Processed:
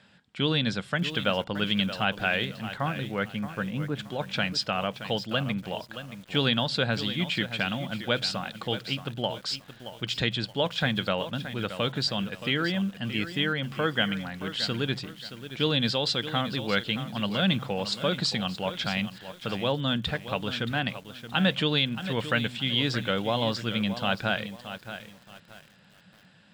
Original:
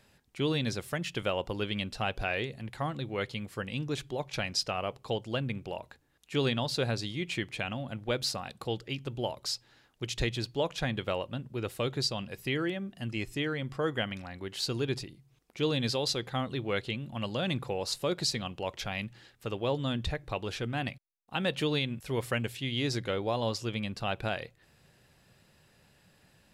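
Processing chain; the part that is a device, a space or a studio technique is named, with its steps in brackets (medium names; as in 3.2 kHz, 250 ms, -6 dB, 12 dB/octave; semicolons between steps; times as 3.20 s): 2.75–3.98 s: low-pass 2.7 kHz -> 1.3 kHz 12 dB/octave; car door speaker (cabinet simulation 110–7400 Hz, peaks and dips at 190 Hz +8 dB, 380 Hz -7 dB, 1.5 kHz +7 dB, 3.3 kHz +7 dB, 6.2 kHz -9 dB); bit-crushed delay 624 ms, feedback 35%, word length 8-bit, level -11 dB; trim +3.5 dB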